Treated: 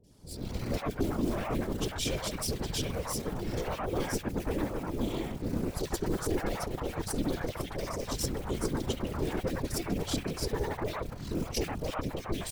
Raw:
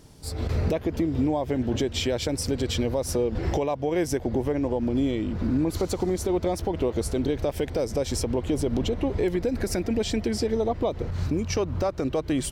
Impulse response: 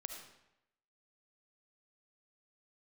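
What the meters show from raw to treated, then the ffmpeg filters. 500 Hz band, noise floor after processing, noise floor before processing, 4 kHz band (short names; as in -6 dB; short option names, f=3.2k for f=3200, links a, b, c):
-9.0 dB, -44 dBFS, -37 dBFS, -4.0 dB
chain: -filter_complex "[0:a]flanger=delay=4.7:depth=5.1:regen=-24:speed=0.17:shape=triangular,acrusher=bits=7:mode=log:mix=0:aa=0.000001,aeval=exprs='0.15*(cos(1*acos(clip(val(0)/0.15,-1,1)))-cos(1*PI/2))+0.0376*(cos(6*acos(clip(val(0)/0.15,-1,1)))-cos(6*PI/2))':c=same,afftfilt=real='hypot(re,im)*cos(2*PI*random(0))':imag='hypot(re,im)*sin(2*PI*random(1))':win_size=512:overlap=0.75,acrossover=split=640|2200[a][b][c];[c]adelay=40[d];[b]adelay=110[e];[a][e][d]amix=inputs=3:normalize=0,adynamicequalizer=threshold=0.00251:dfrequency=2000:dqfactor=0.7:tfrequency=2000:tqfactor=0.7:attack=5:release=100:ratio=0.375:range=2:mode=boostabove:tftype=highshelf,volume=1dB"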